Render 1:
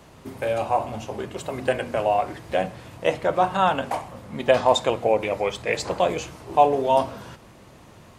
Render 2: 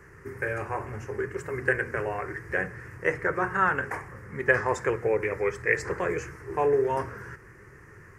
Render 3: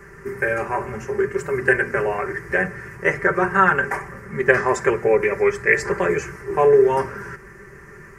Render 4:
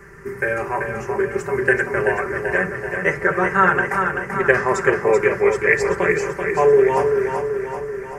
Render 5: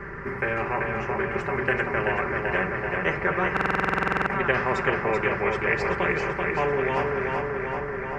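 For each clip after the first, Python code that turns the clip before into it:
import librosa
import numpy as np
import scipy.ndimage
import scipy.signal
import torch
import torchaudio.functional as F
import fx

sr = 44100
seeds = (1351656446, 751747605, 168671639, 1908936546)

y1 = fx.curve_eq(x, sr, hz=(130.0, 250.0, 410.0, 650.0, 1800.0, 3600.0, 5300.0), db=(0, -12, 4, -18, 10, -28, -8))
y2 = y1 + 0.67 * np.pad(y1, (int(5.1 * sr / 1000.0), 0))[:len(y1)]
y2 = F.gain(torch.from_numpy(y2), 6.5).numpy()
y3 = fx.echo_feedback(y2, sr, ms=385, feedback_pct=58, wet_db=-6.0)
y4 = fx.air_absorb(y3, sr, metres=360.0)
y4 = fx.buffer_glitch(y4, sr, at_s=(3.52,), block=2048, repeats=15)
y4 = fx.spectral_comp(y4, sr, ratio=2.0)
y4 = F.gain(torch.from_numpy(y4), -5.0).numpy()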